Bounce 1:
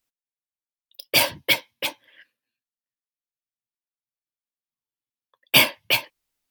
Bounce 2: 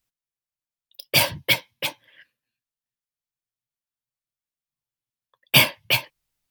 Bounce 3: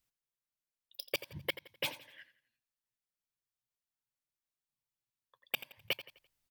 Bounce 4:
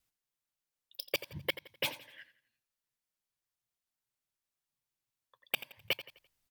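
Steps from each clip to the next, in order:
low shelf with overshoot 200 Hz +6.5 dB, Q 1.5
gate with flip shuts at −9 dBFS, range −33 dB; downward compressor 6 to 1, threshold −28 dBFS, peak gain reduction 10 dB; repeating echo 85 ms, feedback 38%, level −14.5 dB; level −4 dB
pitch vibrato 0.81 Hz 6.4 cents; level +2 dB

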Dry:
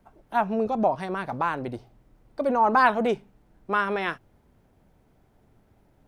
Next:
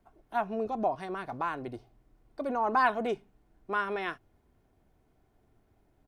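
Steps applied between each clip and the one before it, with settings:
comb filter 2.8 ms, depth 31%
level −7 dB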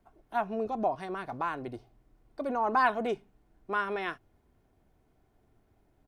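no processing that can be heard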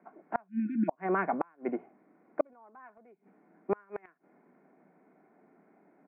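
time-frequency box erased 0:00.48–0:00.89, 360–1,400 Hz
Chebyshev band-pass filter 170–2,300 Hz, order 5
gate with flip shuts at −25 dBFS, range −36 dB
level +9 dB

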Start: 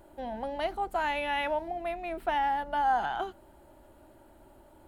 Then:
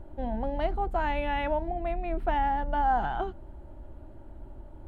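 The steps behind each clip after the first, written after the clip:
RIAA equalisation playback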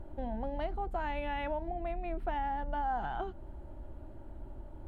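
downward compressor 2 to 1, threshold −35 dBFS, peak gain reduction 8 dB
level −1 dB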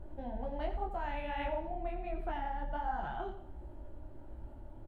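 repeating echo 88 ms, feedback 36%, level −10 dB
micro pitch shift up and down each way 47 cents
level +1 dB

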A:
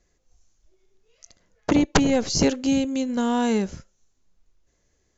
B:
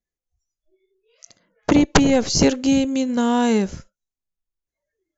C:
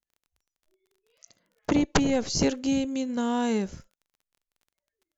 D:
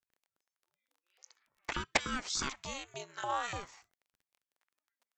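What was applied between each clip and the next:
noise reduction from a noise print of the clip's start 27 dB; level +4 dB
surface crackle 23 per second −42 dBFS; level −8 dB
auto-filter high-pass saw up 3.4 Hz 670–1,800 Hz; ring modulator whose carrier an LFO sweeps 430 Hz, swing 80%, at 0.48 Hz; level −3 dB

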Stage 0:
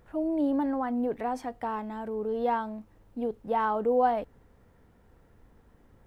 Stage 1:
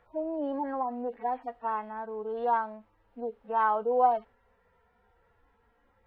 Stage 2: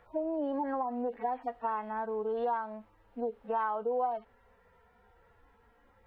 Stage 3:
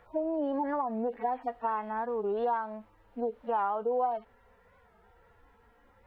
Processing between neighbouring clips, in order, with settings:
harmonic-percussive split with one part muted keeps harmonic; three-way crossover with the lows and the highs turned down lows −14 dB, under 540 Hz, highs −18 dB, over 3,600 Hz; level +3.5 dB
downward compressor 5 to 1, threshold −33 dBFS, peak gain reduction 13.5 dB; level +3.5 dB
wow of a warped record 45 rpm, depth 160 cents; level +2 dB

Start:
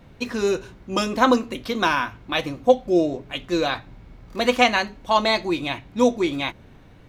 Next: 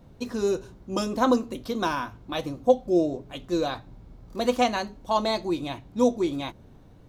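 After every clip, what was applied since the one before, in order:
parametric band 2,200 Hz −11 dB 1.5 octaves
level −2.5 dB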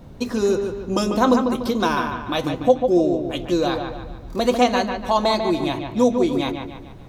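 in parallel at +2.5 dB: downward compressor, threshold −32 dBFS, peak gain reduction 18 dB
on the sum: delay with a low-pass on its return 146 ms, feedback 44%, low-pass 3,200 Hz, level −6 dB
level +2 dB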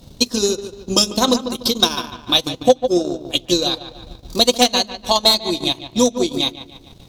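high shelf with overshoot 2,700 Hz +13 dB, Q 1.5
harmonic generator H 5 −6 dB, 7 −13 dB, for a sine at 1 dBFS
transient designer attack +7 dB, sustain −12 dB
level −8 dB

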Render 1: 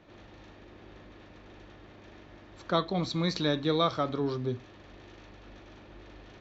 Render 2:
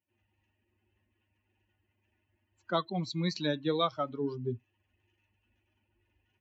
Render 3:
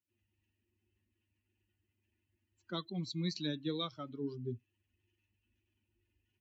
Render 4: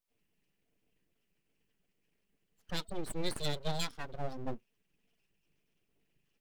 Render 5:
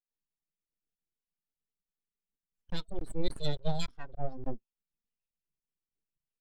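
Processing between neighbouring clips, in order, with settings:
spectral dynamics exaggerated over time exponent 2; high-pass filter 100 Hz 24 dB per octave
drawn EQ curve 350 Hz 0 dB, 680 Hz −13 dB, 3,900 Hz +1 dB; level −4.5 dB
full-wave rectification; level +4.5 dB
regular buffer underruns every 0.29 s, samples 1,024, zero, from 0:00.38; every bin expanded away from the loudest bin 1.5 to 1; level +5 dB

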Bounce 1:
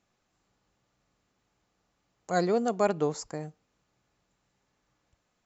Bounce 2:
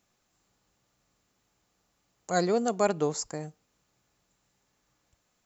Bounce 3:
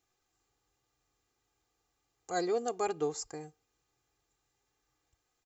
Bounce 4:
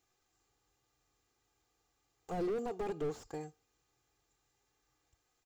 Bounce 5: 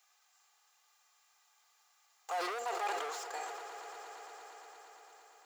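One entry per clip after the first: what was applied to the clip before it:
high-shelf EQ 6,400 Hz +12 dB
comb filter 2.5 ms, depth 71%; level −8 dB
slew-rate limiting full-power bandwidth 8.6 Hz; level +1 dB
high-pass filter 770 Hz 24 dB per octave; echo that builds up and dies away 115 ms, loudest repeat 5, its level −15 dB; level that may fall only so fast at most 27 dB per second; level +9.5 dB

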